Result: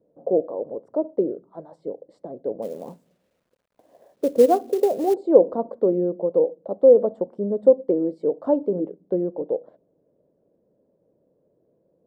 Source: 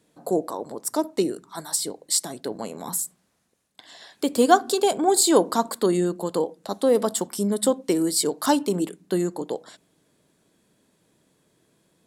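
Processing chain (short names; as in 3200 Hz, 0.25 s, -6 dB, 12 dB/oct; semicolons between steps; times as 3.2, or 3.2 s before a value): synth low-pass 540 Hz, resonance Q 4.9; 2.62–5.14 companded quantiser 6-bit; gain -5 dB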